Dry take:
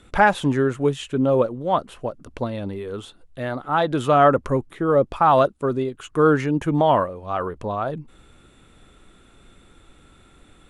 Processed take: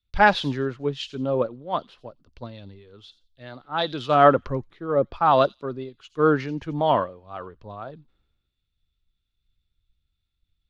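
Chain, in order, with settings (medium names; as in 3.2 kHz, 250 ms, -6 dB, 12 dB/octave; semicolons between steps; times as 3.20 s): resonant high shelf 6.4 kHz -12 dB, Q 3; feedback echo behind a high-pass 88 ms, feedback 31%, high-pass 5.6 kHz, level -7.5 dB; three bands expanded up and down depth 100%; trim -6.5 dB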